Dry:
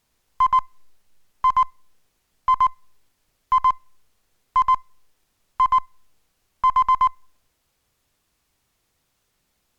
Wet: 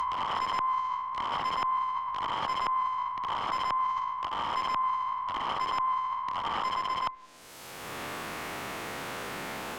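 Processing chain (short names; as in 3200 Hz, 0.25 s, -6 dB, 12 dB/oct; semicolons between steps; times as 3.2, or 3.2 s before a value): spectral swells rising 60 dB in 2.58 s; low shelf 70 Hz -11 dB; wrapped overs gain 17 dB; treble ducked by the level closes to 1700 Hz, closed at -21.5 dBFS; negative-ratio compressor -32 dBFS, ratio -0.5; low shelf 160 Hz -7 dB; three-band squash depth 100%; gain +2 dB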